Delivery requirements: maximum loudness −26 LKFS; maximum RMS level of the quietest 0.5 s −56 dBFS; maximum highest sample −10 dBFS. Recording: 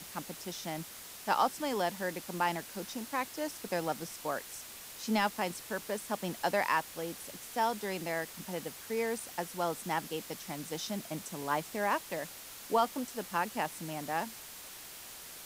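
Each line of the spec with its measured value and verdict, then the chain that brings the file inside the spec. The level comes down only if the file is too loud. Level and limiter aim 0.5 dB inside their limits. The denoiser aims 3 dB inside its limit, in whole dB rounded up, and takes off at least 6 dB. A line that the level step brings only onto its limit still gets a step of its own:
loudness −35.5 LKFS: in spec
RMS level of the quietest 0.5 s −48 dBFS: out of spec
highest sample −16.5 dBFS: in spec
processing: broadband denoise 11 dB, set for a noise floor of −48 dBFS

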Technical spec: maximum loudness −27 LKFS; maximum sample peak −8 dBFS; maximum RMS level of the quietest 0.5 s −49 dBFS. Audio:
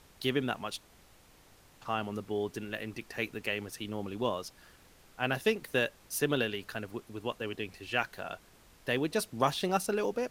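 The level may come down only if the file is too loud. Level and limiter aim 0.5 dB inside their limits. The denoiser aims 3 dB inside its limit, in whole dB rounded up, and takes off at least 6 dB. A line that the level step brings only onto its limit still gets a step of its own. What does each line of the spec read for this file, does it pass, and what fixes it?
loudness −34.0 LKFS: in spec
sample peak −12.0 dBFS: in spec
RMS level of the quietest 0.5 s −60 dBFS: in spec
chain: no processing needed

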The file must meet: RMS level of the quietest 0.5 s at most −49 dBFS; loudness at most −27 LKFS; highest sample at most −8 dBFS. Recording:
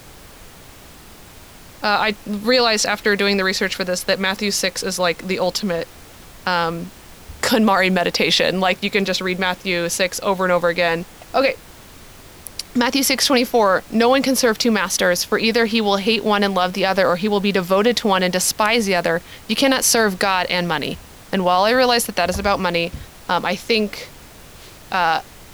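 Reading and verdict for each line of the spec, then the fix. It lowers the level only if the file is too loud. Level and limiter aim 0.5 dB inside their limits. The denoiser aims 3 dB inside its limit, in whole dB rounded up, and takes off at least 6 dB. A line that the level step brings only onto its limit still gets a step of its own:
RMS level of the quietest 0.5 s −42 dBFS: out of spec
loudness −18.0 LKFS: out of spec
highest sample −4.5 dBFS: out of spec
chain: level −9.5 dB

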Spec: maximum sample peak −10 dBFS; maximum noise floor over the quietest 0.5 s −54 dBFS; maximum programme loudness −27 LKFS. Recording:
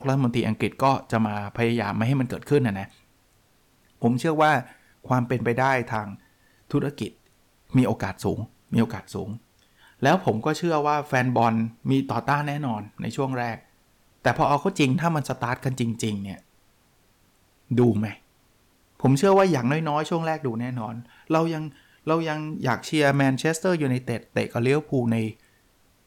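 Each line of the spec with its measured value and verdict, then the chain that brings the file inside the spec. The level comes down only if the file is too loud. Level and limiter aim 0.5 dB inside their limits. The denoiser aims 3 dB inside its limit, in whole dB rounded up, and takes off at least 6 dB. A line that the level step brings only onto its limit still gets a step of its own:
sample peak −9.5 dBFS: out of spec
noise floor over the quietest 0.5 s −62 dBFS: in spec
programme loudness −24.5 LKFS: out of spec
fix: level −3 dB

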